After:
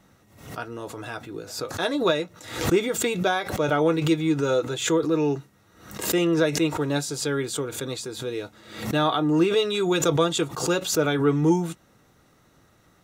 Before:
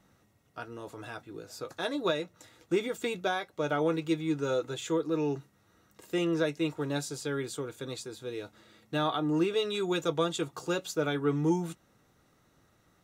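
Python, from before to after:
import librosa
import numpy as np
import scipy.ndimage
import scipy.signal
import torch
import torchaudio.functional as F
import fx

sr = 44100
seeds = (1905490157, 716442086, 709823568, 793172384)

y = fx.pre_swell(x, sr, db_per_s=90.0)
y = F.gain(torch.from_numpy(y), 7.0).numpy()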